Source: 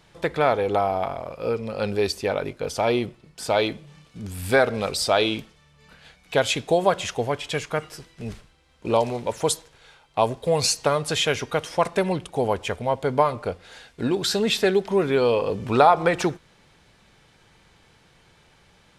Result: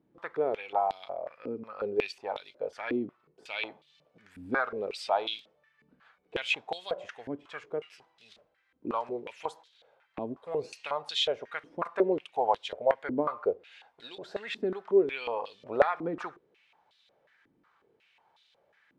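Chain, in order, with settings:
0:11.86–0:14.17: dynamic equaliser 550 Hz, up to +6 dB, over −34 dBFS, Q 0.85
band-pass on a step sequencer 5.5 Hz 280–3,700 Hz

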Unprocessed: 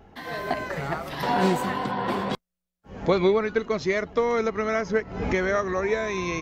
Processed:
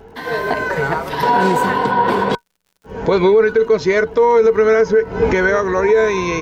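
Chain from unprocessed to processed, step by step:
hollow resonant body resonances 450/950/1,500 Hz, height 15 dB, ringing for 90 ms
brickwall limiter −13 dBFS, peak gain reduction 12 dB
surface crackle 100 per second −51 dBFS
level +7.5 dB

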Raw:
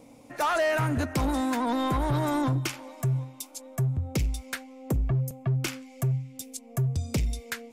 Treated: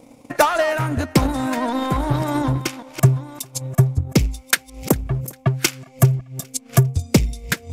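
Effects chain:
delay that plays each chunk backwards 565 ms, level −11 dB
0:04.50–0:05.89: spectral tilt +1.5 dB per octave
transient designer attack +12 dB, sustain −6 dB
feedback echo with a high-pass in the loop 401 ms, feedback 38%, high-pass 530 Hz, level −23 dB
level +4 dB

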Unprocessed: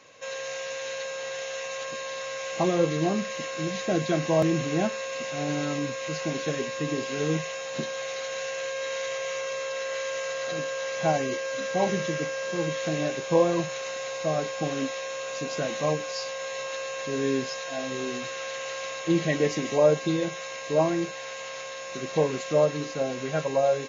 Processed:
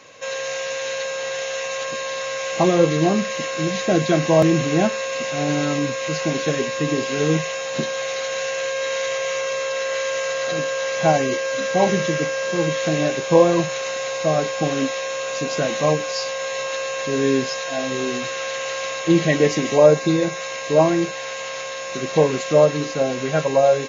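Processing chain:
0:19.86–0:20.40: parametric band 3,100 Hz −8 dB 0.22 octaves
level +7.5 dB

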